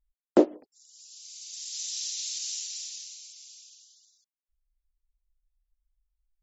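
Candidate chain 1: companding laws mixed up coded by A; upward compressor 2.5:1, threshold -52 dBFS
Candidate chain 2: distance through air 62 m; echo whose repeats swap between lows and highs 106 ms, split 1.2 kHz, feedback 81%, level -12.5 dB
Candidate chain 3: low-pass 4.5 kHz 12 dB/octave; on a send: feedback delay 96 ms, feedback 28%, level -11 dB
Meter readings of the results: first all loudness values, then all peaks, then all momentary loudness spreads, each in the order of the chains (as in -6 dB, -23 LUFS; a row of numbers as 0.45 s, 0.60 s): -30.5 LUFS, -31.5 LUFS, -30.5 LUFS; -4.0 dBFS, -4.0 dBFS, -3.5 dBFS; 23 LU, 21 LU, 25 LU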